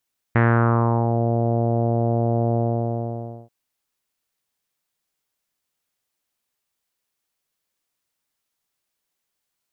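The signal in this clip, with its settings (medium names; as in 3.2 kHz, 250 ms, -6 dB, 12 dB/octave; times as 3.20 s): synth note saw A#2 24 dB/octave, low-pass 690 Hz, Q 2.6, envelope 1.5 oct, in 0.85 s, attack 6.7 ms, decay 0.70 s, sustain -5 dB, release 0.93 s, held 2.21 s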